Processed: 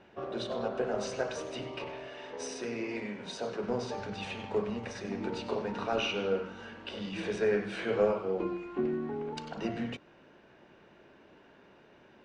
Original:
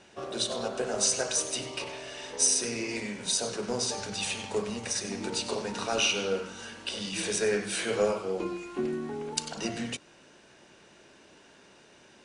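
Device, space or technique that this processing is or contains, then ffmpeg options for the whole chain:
phone in a pocket: -filter_complex "[0:a]lowpass=3.2k,highshelf=f=2.5k:g=-9,asettb=1/sr,asplit=3[a][b][c];[a]atrim=end=2.074[d];[b]atrim=start=2.07:end=3.64,asetpts=PTS-STARTPTS,afade=t=in:d=0.004:c=qsin,afade=t=out:st=1.566:d=0.004:c=qsin,lowshelf=f=120:g=-9.5[e];[c]atrim=start=3.636[f];[d][e]acrossfade=d=0.004:c1=hsin:c2=qsin[g];[g][f]acrossfade=d=0.004:c1=qsin:c2=hsin"

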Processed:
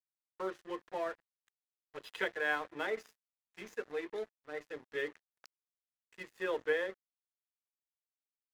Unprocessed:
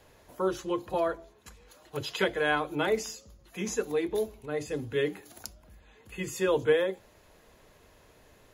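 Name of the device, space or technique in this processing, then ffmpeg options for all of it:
pocket radio on a weak battery: -af "highpass=330,lowpass=4.1k,aeval=exprs='sgn(val(0))*max(abs(val(0))-0.00708,0)':c=same,equalizer=f=1.8k:t=o:w=0.43:g=7.5,volume=-7.5dB"

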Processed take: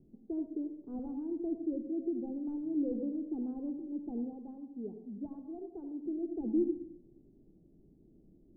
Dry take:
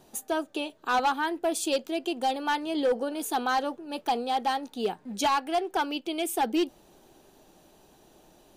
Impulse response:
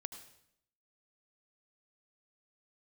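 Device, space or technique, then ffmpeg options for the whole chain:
next room: -filter_complex "[0:a]lowpass=f=320:w=0.5412,lowpass=f=320:w=1.3066[a];[1:a]atrim=start_sample=2205[b];[a][b]afir=irnorm=-1:irlink=0,asettb=1/sr,asplit=3[c][d][e];[c]atrim=end=4.334[f];[d]atrim=start=4.33:end=6.06,asetpts=PTS-STARTPTS,afade=t=in:d=0.004:c=qsin,afade=t=out:st=1.726:d=0.004:c=qsin,lowshelf=f=470:g=-8[g];[e]atrim=start=6.056[h];[f][g]acrossfade=d=0.004:c1=hsin:c2=qsin[i];[i][h]acrossfade=d=0.004:c1=qsin:c2=hsin,volume=4dB"

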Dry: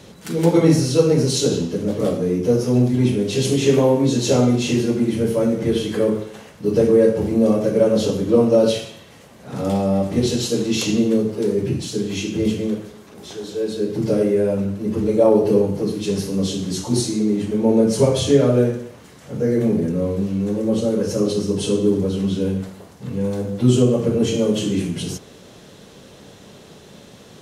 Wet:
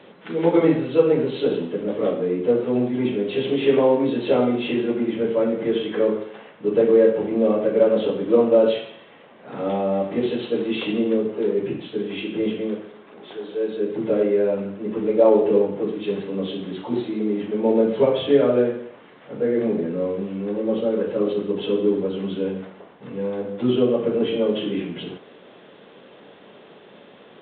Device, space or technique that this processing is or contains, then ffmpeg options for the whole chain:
telephone: -af "highpass=290,lowpass=3.3k" -ar 8000 -c:a pcm_mulaw

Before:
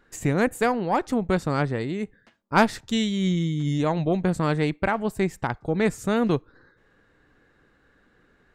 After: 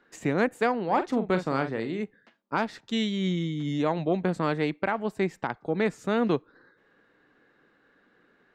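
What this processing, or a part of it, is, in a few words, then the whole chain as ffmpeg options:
DJ mixer with the lows and highs turned down: -filter_complex "[0:a]acrossover=split=160 5500:gain=0.112 1 0.2[a][b][c];[a][b][c]amix=inputs=3:normalize=0,alimiter=limit=-12.5dB:level=0:latency=1:release=436,asettb=1/sr,asplit=3[d][e][f];[d]atrim=end=0.844[g];[e]atrim=start=0.84:end=2.01,asetpts=PTS-STARTPTS,afade=t=in:d=0.004:c=qsin,afade=t=out:st=1.166:d=0.004:c=qsin,asplit=2[h][i];[i]adelay=44,volume=-9dB[j];[h][j]amix=inputs=2:normalize=0,atrim=end_sample=51597[k];[f]atrim=start=2.006[l];[g][k]acrossfade=d=0.004:c1=hsin:c2=qsin[m];[m][l]acrossfade=d=0.004:c1=qsin:c2=hsin,volume=-1dB"

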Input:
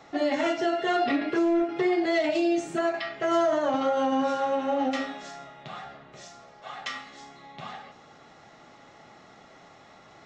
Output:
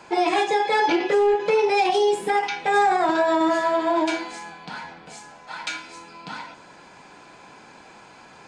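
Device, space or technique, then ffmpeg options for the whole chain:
nightcore: -af "asetrate=53361,aresample=44100,volume=5dB"

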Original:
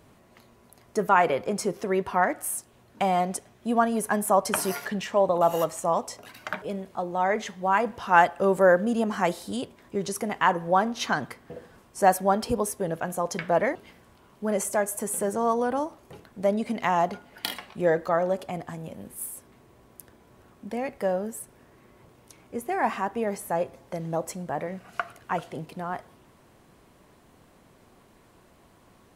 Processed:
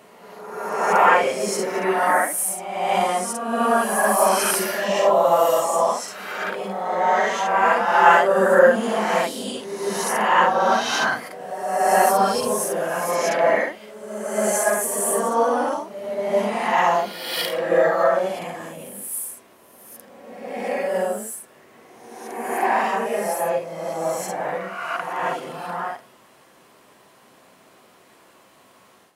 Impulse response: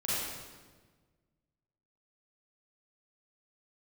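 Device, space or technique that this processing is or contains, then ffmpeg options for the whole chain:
ghost voice: -filter_complex "[0:a]equalizer=f=71:w=0.7:g=-4.5,areverse[a];[1:a]atrim=start_sample=2205[b];[a][b]afir=irnorm=-1:irlink=0,areverse,highpass=f=660:p=1,volume=2dB"

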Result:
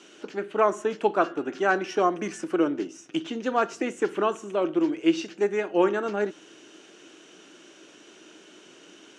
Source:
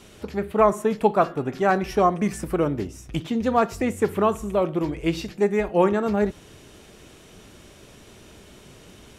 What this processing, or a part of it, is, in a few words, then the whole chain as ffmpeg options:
television speaker: -af "highpass=f=210:w=0.5412,highpass=f=210:w=1.3066,equalizer=f=220:t=q:w=4:g=-5,equalizer=f=320:t=q:w=4:g=10,equalizer=f=1.5k:t=q:w=4:g=8,equalizer=f=2.9k:t=q:w=4:g=8,equalizer=f=6.2k:t=q:w=4:g=7,lowpass=f=8.3k:w=0.5412,lowpass=f=8.3k:w=1.3066,volume=-5dB"

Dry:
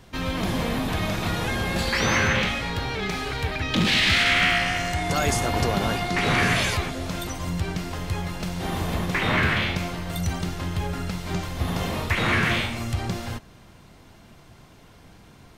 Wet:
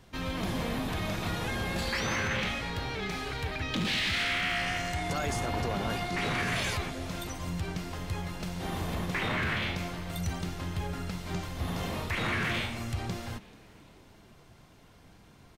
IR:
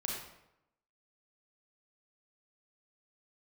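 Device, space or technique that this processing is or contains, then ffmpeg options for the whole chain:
limiter into clipper: -filter_complex "[0:a]asettb=1/sr,asplit=3[a][b][c];[a]atrim=end=5.134[d];[b]atrim=start=5.13:end=5.9,asetpts=PTS-STARTPTS,afade=t=in:d=0.004:c=qsin,afade=t=out:st=0.766:d=0.004:c=qsin,highshelf=f=4.9k:g=-5.5[e];[c]atrim=start=5.896[f];[d][e]acrossfade=d=0.004:c1=hsin:c2=qsin[g];[g][f]acrossfade=d=0.004:c1=qsin:c2=hsin,alimiter=limit=-15.5dB:level=0:latency=1:release=11,asoftclip=type=hard:threshold=-17.5dB,asplit=4[h][i][j][k];[i]adelay=436,afreqshift=100,volume=-23dB[l];[j]adelay=872,afreqshift=200,volume=-28.7dB[m];[k]adelay=1308,afreqshift=300,volume=-34.4dB[n];[h][l][m][n]amix=inputs=4:normalize=0,volume=-6.5dB"

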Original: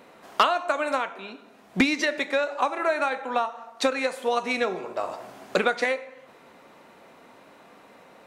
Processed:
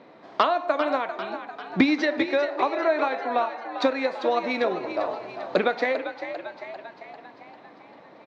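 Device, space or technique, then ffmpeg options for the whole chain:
frequency-shifting delay pedal into a guitar cabinet: -filter_complex "[0:a]asplit=8[a][b][c][d][e][f][g][h];[b]adelay=396,afreqshift=64,volume=-10dB[i];[c]adelay=792,afreqshift=128,volume=-14.9dB[j];[d]adelay=1188,afreqshift=192,volume=-19.8dB[k];[e]adelay=1584,afreqshift=256,volume=-24.6dB[l];[f]adelay=1980,afreqshift=320,volume=-29.5dB[m];[g]adelay=2376,afreqshift=384,volume=-34.4dB[n];[h]adelay=2772,afreqshift=448,volume=-39.3dB[o];[a][i][j][k][l][m][n][o]amix=inputs=8:normalize=0,highpass=92,equalizer=f=130:t=q:w=4:g=6,equalizer=f=310:t=q:w=4:g=6,equalizer=f=640:t=q:w=4:g=3,equalizer=f=1.4k:t=q:w=4:g=-4,equalizer=f=2.8k:t=q:w=4:g=-7,lowpass=f=4.5k:w=0.5412,lowpass=f=4.5k:w=1.3066"

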